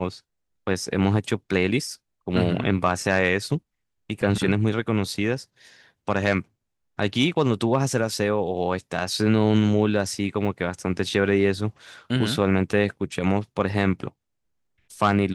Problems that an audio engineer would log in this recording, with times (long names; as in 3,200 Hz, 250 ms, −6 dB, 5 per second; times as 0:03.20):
0:10.45: drop-out 2.5 ms